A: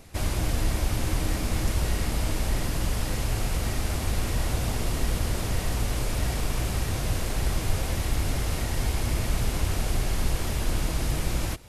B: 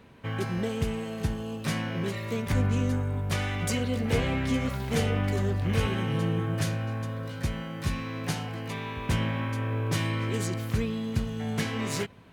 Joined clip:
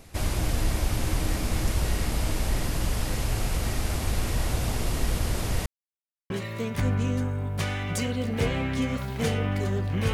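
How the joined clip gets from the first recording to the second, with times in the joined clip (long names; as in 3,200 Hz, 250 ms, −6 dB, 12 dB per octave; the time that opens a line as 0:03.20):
A
0:05.66–0:06.30: silence
0:06.30: continue with B from 0:02.02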